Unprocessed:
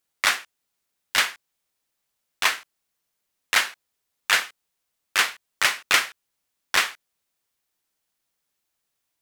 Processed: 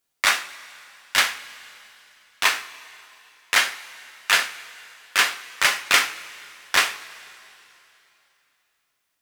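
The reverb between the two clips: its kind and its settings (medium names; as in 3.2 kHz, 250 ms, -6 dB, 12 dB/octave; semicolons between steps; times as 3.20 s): two-slope reverb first 0.36 s, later 3.1 s, from -18 dB, DRR 5 dB; trim +1 dB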